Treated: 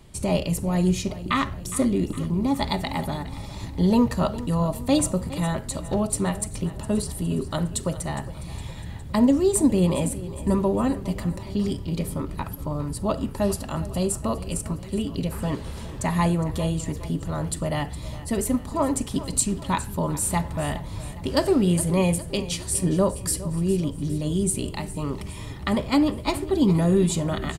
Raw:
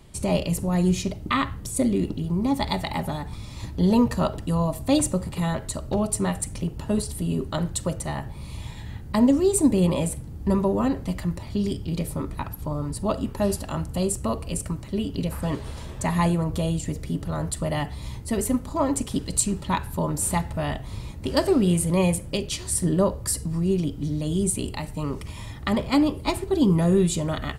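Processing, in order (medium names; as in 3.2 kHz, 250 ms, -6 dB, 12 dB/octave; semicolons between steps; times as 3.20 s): feedback delay 411 ms, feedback 55%, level -16 dB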